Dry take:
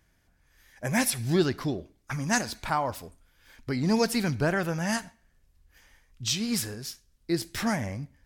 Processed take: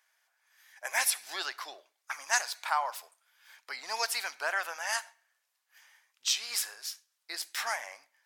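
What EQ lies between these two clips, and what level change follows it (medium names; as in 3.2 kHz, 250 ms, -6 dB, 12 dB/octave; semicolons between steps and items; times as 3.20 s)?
high-pass 780 Hz 24 dB/octave; 0.0 dB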